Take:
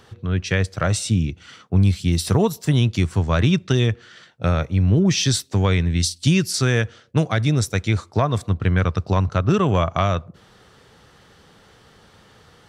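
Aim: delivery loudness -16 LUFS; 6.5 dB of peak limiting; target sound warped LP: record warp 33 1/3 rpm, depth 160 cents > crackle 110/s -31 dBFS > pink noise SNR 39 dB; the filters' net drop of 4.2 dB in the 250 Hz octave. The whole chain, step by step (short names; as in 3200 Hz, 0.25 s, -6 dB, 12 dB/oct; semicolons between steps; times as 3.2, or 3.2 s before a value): bell 250 Hz -7 dB; limiter -12.5 dBFS; record warp 33 1/3 rpm, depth 160 cents; crackle 110/s -31 dBFS; pink noise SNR 39 dB; gain +7.5 dB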